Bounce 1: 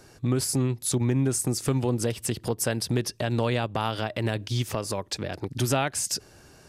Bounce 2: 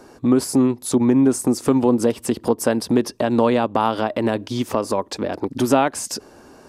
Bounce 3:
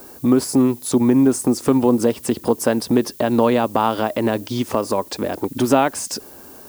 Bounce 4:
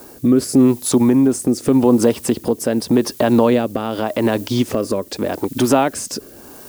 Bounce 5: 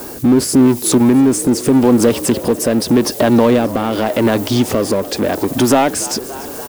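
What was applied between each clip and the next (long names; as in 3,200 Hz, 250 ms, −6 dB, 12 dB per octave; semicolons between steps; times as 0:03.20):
graphic EQ with 10 bands 125 Hz −6 dB, 250 Hz +12 dB, 500 Hz +6 dB, 1,000 Hz +10 dB
background noise violet −44 dBFS; level +1 dB
in parallel at +1 dB: brickwall limiter −12 dBFS, peak gain reduction 10.5 dB; on the sum: rotating-speaker cabinet horn 0.85 Hz; level −1 dB
echo with shifted repeats 288 ms, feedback 64%, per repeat +64 Hz, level −22.5 dB; power curve on the samples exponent 0.7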